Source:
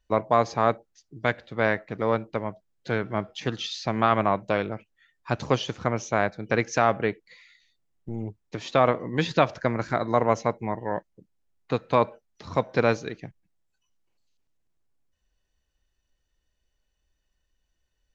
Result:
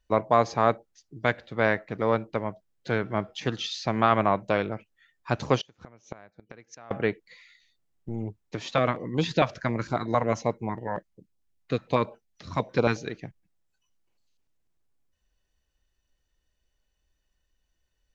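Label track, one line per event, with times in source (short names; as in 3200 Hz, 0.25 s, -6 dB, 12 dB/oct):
5.590000	6.910000	flipped gate shuts at -23 dBFS, range -27 dB
8.690000	13.070000	stepped notch 11 Hz 360–1800 Hz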